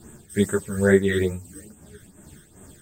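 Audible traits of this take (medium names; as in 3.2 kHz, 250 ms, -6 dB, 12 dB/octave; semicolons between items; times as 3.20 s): phasing stages 12, 2.4 Hz, lowest notch 760–4800 Hz; tremolo triangle 2.7 Hz, depth 65%; a shimmering, thickened sound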